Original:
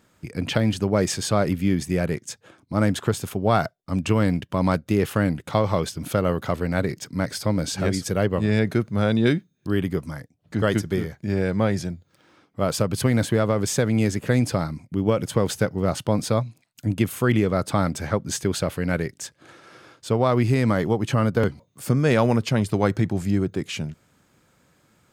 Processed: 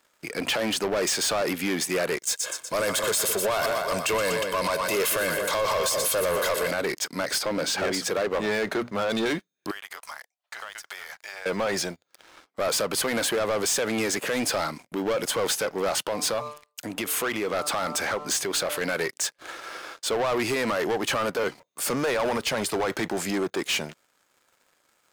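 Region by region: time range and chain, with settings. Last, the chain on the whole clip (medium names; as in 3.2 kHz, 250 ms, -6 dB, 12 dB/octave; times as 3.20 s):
2.19–6.71 s: treble shelf 5 kHz +11 dB + comb 1.9 ms, depth 64% + two-band feedback delay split 660 Hz, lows 208 ms, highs 121 ms, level -12 dB
7.39–9.10 s: treble shelf 5 kHz -10.5 dB + hum notches 60/120/180/240 Hz
9.71–11.46 s: high-pass 750 Hz 24 dB/octave + compression 16:1, threshold -44 dBFS
16.06–18.81 s: de-hum 148.4 Hz, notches 9 + compression 3:1, threshold -25 dBFS
whole clip: high-pass 540 Hz 12 dB/octave; peak limiter -20 dBFS; waveshaping leveller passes 3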